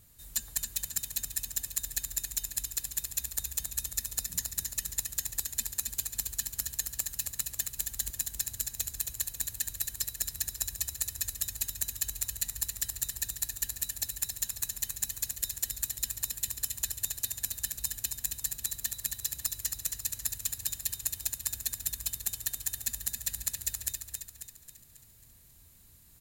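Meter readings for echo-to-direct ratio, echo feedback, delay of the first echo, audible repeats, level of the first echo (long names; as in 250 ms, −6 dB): −4.0 dB, 49%, 271 ms, 5, −5.0 dB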